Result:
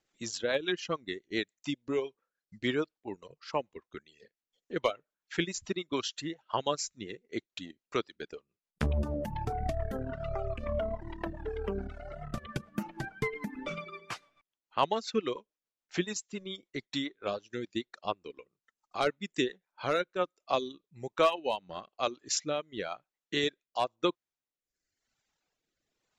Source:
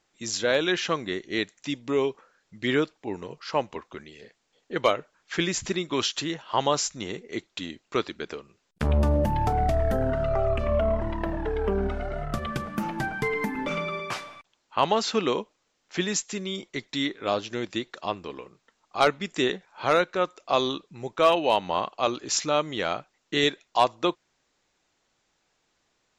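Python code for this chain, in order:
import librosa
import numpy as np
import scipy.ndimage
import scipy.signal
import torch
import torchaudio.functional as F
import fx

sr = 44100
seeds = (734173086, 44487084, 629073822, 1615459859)

y = fx.transient(x, sr, attack_db=3, sustain_db=-7)
y = fx.dereverb_blind(y, sr, rt60_s=1.2)
y = fx.rotary_switch(y, sr, hz=7.0, then_hz=1.0, switch_at_s=19.76)
y = F.gain(torch.from_numpy(y), -5.0).numpy()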